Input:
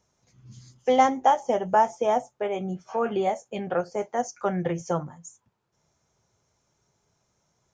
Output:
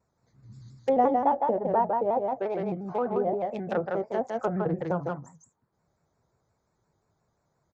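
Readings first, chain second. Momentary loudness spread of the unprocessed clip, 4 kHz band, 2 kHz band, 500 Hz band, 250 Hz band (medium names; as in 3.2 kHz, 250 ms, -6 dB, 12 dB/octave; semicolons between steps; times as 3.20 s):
10 LU, under -10 dB, -6.5 dB, -1.0 dB, -0.5 dB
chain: local Wiener filter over 15 samples; treble shelf 3.3 kHz +11.5 dB; delay 159 ms -3.5 dB; low-pass that closes with the level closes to 790 Hz, closed at -20 dBFS; vibrato with a chosen wave square 5.7 Hz, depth 100 cents; trim -2 dB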